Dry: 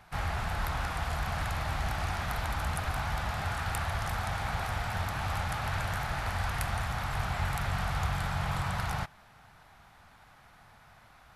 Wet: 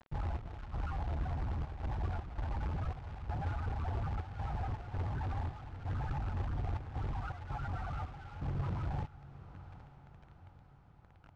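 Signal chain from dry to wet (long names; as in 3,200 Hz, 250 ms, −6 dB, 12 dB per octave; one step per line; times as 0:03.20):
0:07.13–0:08.41: low-shelf EQ 430 Hz −8 dB
brickwall limiter −26.5 dBFS, peak gain reduction 10.5 dB
spectral peaks only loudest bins 8
bit reduction 9 bits
gate pattern "xx..xxxxx.xx.x" 82 BPM −12 dB
soft clipping −34 dBFS, distortion −16 dB
log-companded quantiser 4 bits
head-to-tape spacing loss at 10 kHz 28 dB
on a send: feedback delay with all-pass diffusion 855 ms, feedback 54%, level −15.5 dB
on the sum: level +4.5 dB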